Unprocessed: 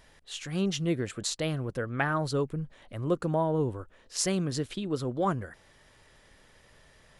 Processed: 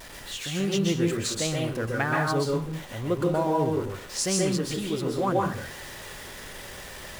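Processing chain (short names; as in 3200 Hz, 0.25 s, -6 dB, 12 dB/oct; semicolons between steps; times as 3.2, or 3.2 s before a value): zero-crossing step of -38.5 dBFS; low shelf 85 Hz -5 dB; reverb RT60 0.40 s, pre-delay 0.118 s, DRR -1 dB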